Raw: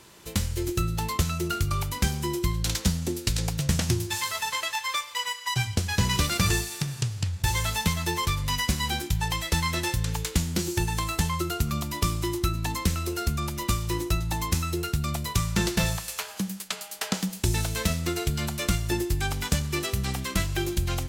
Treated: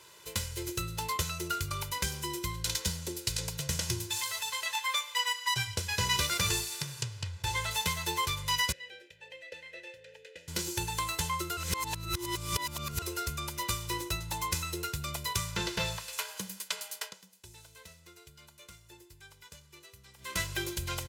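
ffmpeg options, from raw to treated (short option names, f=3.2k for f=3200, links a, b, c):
-filter_complex "[0:a]asettb=1/sr,asplit=3[a][b][c];[a]atrim=end=2.034[d];[b]atrim=start=2.03:end=4.66,asetpts=PTS-STARTPTS,afade=t=in:d=0.004:c=qsin,afade=t=out:st=2.626:d=0.004:c=qsin,acrossover=split=440|3000[e][f][g];[f]acompressor=threshold=-35dB:ratio=6:attack=3.2:release=140:knee=2.83:detection=peak[h];[e][h][g]amix=inputs=3:normalize=0[i];[c]atrim=start=4.656[j];[d][i]acrossfade=d=0.004:c1=hsin:c2=qsin[k];[k][j]acrossfade=d=0.004:c1=qsin:c2=hsin,asettb=1/sr,asplit=3[l][m][n];[l]atrim=end=7.044[o];[m]atrim=start=7.04:end=7.71,asetpts=PTS-STARTPTS,afade=t=in:d=0.004:c=qsin,afade=t=out:st=0.666:d=0.004:c=qsin,highshelf=f=7.4k:g=-11[p];[n]atrim=start=7.706[q];[o][p]acrossfade=d=0.004:c1=hsin:c2=qsin[r];[r][q]acrossfade=d=0.004:c1=qsin:c2=hsin,asettb=1/sr,asplit=3[s][t][u];[s]atrim=end=8.724[v];[t]atrim=start=8.72:end=10.48,asetpts=PTS-STARTPTS,afade=t=in:d=0.004:c=qsin,afade=t=out:st=1.756:d=0.004:c=qsin,asplit=3[w][x][y];[w]bandpass=f=530:t=q:w=8,volume=0dB[z];[x]bandpass=f=1.84k:t=q:w=8,volume=-6dB[aa];[y]bandpass=f=2.48k:t=q:w=8,volume=-9dB[ab];[z][aa][ab]amix=inputs=3:normalize=0[ac];[u]atrim=start=10.476[ad];[v][ac]acrossfade=d=0.004:c1=hsin:c2=qsin[ae];[ae][ad]acrossfade=d=0.004:c1=qsin:c2=hsin,asettb=1/sr,asplit=3[af][ag][ah];[af]atrim=end=15.514[ai];[ag]atrim=start=15.51:end=16.13,asetpts=PTS-STARTPTS,afade=t=in:d=0.004:c=qsin,afade=t=out:st=0.616:d=0.004:c=qsin,acrossover=split=5300[aj][ak];[ak]acompressor=threshold=-44dB:ratio=4:attack=1:release=60[al];[aj][al]amix=inputs=2:normalize=0[am];[ah]atrim=start=16.126[an];[ai][am]acrossfade=d=0.004:c1=hsin:c2=qsin[ao];[ao][an]acrossfade=d=0.004:c1=qsin:c2=hsin,asplit=5[ap][aq][ar][as][at];[ap]atrim=end=11.572[au];[aq]atrim=start=11.568:end=13.022,asetpts=PTS-STARTPTS,areverse[av];[ar]atrim=start=13.018:end=17.14,asetpts=PTS-STARTPTS,afade=t=out:st=3.912:d=0.21:silence=0.1[aw];[as]atrim=start=17.14:end=20.18,asetpts=PTS-STARTPTS,volume=-20dB[ax];[at]atrim=start=20.18,asetpts=PTS-STARTPTS,afade=t=in:d=0.21:silence=0.1[ay];[au][av]acrossfade=d=0.004:c1=hsin:c2=hsin[az];[aw][ax][ay]concat=n=3:v=0:a=1[ba];[az][ba]acrossfade=d=0.004:c1=hsin:c2=hsin,highpass=67,lowshelf=f=500:g=-8.5,aecho=1:1:2:0.64,volume=-3.5dB"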